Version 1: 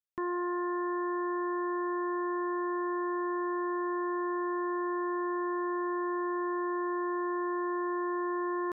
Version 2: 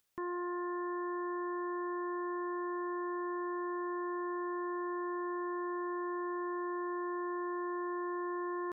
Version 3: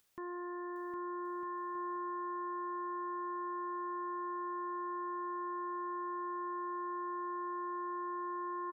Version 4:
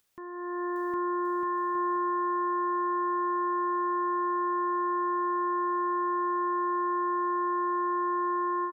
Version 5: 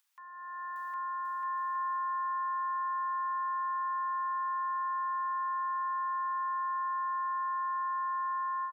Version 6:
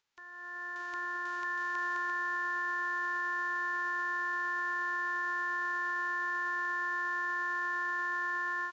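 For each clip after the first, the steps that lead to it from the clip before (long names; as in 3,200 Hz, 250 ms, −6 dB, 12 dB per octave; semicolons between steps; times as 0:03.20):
upward compression, threshold −57 dBFS; level −5 dB
brickwall limiter −41.5 dBFS, peak gain reduction 9 dB; on a send: bouncing-ball delay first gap 760 ms, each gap 0.65×, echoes 5; on the sum: level +4.5 dB
automatic gain control gain up to 11 dB
elliptic high-pass filter 870 Hz, stop band 40 dB; level −2.5 dB
spectral envelope flattened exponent 0.3; high-frequency loss of the air 82 metres; downsampling to 16,000 Hz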